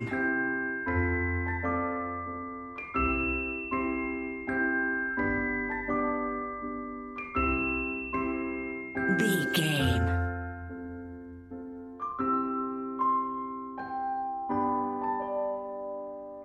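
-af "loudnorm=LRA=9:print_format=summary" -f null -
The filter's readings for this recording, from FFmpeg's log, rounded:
Input Integrated:    -31.0 LUFS
Input True Peak:     -13.7 dBTP
Input LRA:             3.6 LU
Input Threshold:     -41.2 LUFS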